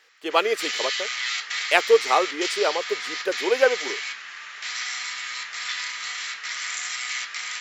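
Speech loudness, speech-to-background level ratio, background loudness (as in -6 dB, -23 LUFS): -23.5 LUFS, 5.0 dB, -28.5 LUFS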